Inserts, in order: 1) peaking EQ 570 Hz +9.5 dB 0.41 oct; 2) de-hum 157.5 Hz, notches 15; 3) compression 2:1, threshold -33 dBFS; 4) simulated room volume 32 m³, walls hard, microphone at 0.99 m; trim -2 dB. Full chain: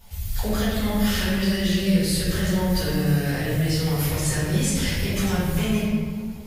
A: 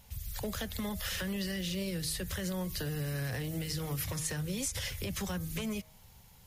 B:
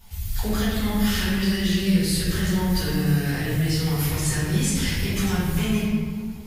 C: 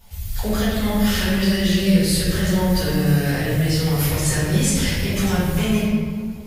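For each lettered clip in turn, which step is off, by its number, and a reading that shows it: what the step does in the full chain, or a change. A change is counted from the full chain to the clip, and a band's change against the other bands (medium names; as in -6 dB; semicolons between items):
4, echo-to-direct 12.0 dB to none; 1, 500 Hz band -3.0 dB; 3, mean gain reduction 3.0 dB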